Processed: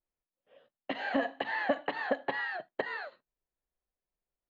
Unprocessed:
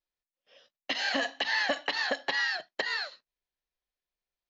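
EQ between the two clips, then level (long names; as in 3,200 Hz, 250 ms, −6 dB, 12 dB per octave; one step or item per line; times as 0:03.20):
moving average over 8 samples
tilt shelving filter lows +7 dB, about 1,400 Hz
−2.5 dB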